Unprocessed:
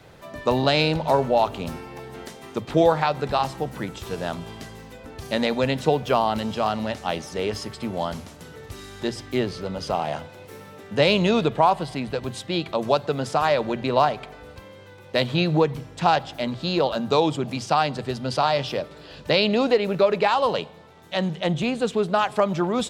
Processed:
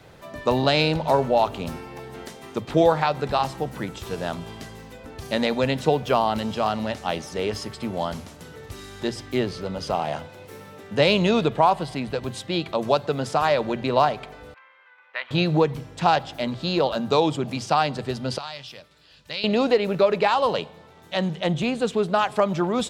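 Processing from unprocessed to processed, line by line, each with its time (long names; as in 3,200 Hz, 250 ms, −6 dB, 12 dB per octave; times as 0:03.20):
0:14.54–0:15.31: flat-topped band-pass 1,600 Hz, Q 1.2
0:18.38–0:19.44: guitar amp tone stack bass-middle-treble 5-5-5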